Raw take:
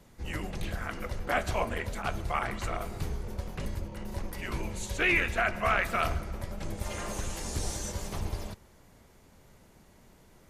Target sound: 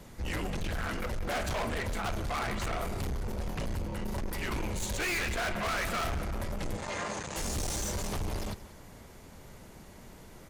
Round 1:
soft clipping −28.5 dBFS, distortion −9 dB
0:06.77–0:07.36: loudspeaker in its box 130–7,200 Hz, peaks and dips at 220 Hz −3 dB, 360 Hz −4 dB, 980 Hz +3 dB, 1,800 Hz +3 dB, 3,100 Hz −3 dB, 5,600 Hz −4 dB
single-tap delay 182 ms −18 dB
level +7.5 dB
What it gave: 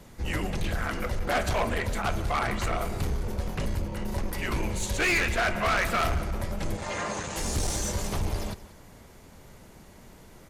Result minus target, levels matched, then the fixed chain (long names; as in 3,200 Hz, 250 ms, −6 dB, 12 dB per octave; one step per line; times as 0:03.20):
soft clipping: distortion −5 dB
soft clipping −37.5 dBFS, distortion −4 dB
0:06.77–0:07.36: loudspeaker in its box 130–7,200 Hz, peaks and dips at 220 Hz −3 dB, 360 Hz −4 dB, 980 Hz +3 dB, 1,800 Hz +3 dB, 3,100 Hz −3 dB, 5,600 Hz −4 dB
single-tap delay 182 ms −18 dB
level +7.5 dB